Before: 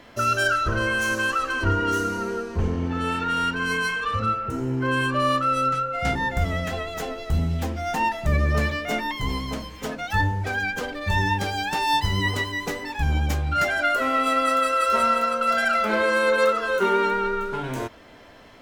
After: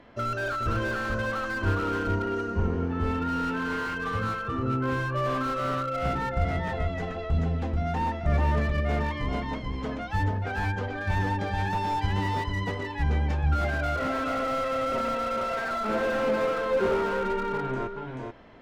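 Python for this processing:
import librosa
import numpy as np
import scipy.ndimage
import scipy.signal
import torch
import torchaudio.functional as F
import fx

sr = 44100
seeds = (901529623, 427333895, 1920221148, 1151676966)

y = fx.spacing_loss(x, sr, db_at_10k=25)
y = y + 10.0 ** (-3.5 / 20.0) * np.pad(y, (int(434 * sr / 1000.0), 0))[:len(y)]
y = fx.slew_limit(y, sr, full_power_hz=65.0)
y = y * librosa.db_to_amplitude(-2.5)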